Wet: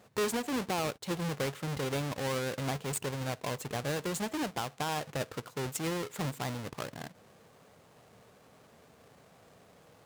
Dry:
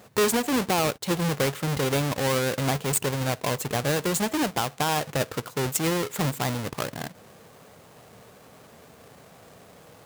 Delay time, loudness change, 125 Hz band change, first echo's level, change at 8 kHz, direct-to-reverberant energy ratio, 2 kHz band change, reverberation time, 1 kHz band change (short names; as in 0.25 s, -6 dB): none, -9.0 dB, -8.5 dB, none, -10.5 dB, none, -8.5 dB, none, -8.5 dB